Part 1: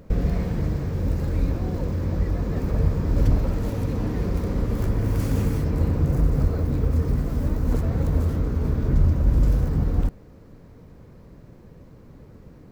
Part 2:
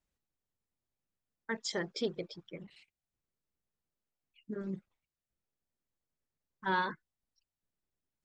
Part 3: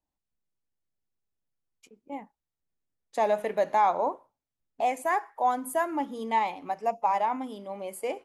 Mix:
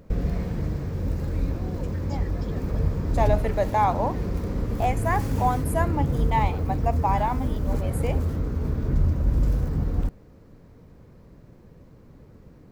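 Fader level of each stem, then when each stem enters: -3.0 dB, -13.0 dB, +1.0 dB; 0.00 s, 0.45 s, 0.00 s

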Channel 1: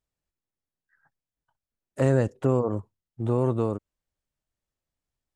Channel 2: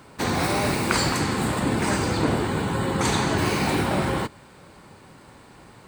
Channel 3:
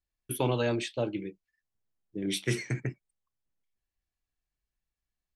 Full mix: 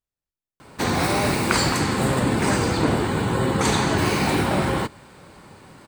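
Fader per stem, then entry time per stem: -5.5 dB, +2.0 dB, mute; 0.00 s, 0.60 s, mute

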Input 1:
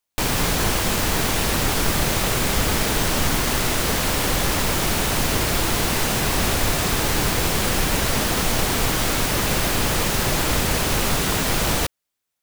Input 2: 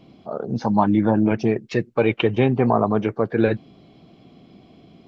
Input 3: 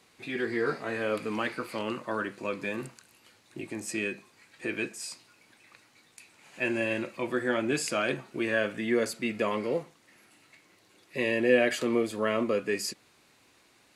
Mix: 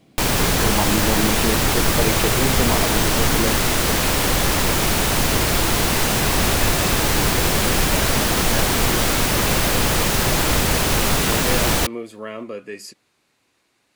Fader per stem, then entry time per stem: +2.5 dB, -5.5 dB, -4.0 dB; 0.00 s, 0.00 s, 0.00 s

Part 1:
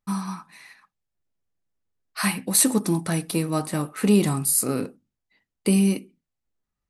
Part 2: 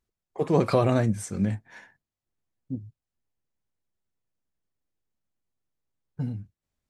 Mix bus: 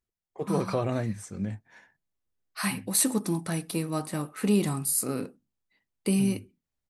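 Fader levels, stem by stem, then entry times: -5.5 dB, -6.5 dB; 0.40 s, 0.00 s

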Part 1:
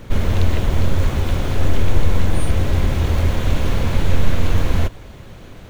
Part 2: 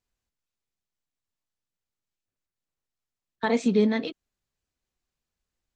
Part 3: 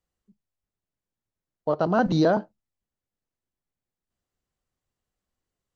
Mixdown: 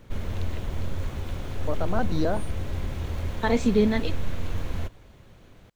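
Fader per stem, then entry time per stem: -13.0 dB, +0.5 dB, -6.5 dB; 0.00 s, 0.00 s, 0.00 s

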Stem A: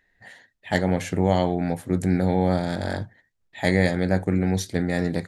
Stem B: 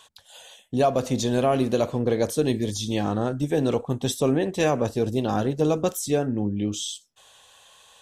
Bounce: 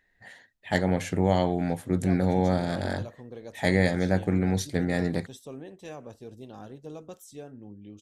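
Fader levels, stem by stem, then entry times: -2.5 dB, -19.5 dB; 0.00 s, 1.25 s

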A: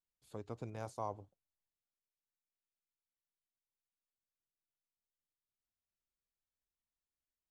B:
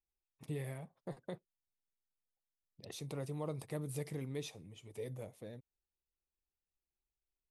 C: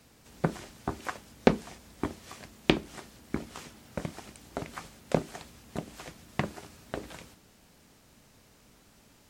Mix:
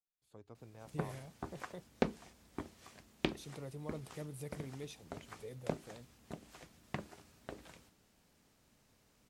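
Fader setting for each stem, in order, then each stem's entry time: -10.0 dB, -5.0 dB, -11.0 dB; 0.00 s, 0.45 s, 0.55 s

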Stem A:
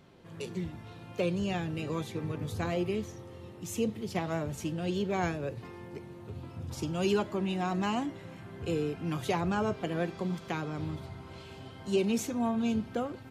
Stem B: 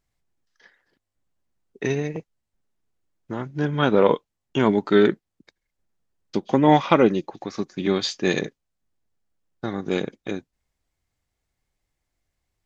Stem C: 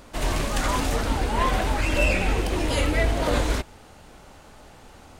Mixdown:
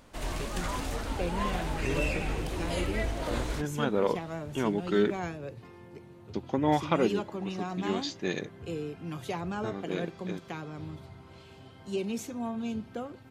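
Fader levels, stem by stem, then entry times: -4.5 dB, -10.0 dB, -9.5 dB; 0.00 s, 0.00 s, 0.00 s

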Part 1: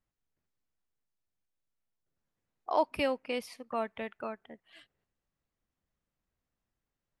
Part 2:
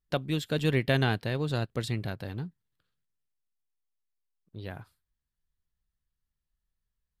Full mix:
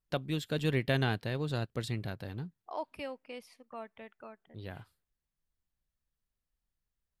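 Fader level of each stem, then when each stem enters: -10.5 dB, -4.0 dB; 0.00 s, 0.00 s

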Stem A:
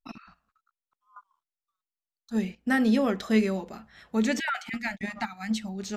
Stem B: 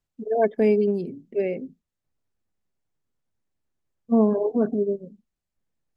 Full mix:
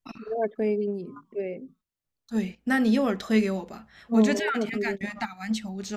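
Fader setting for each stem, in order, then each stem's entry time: +0.5 dB, -6.5 dB; 0.00 s, 0.00 s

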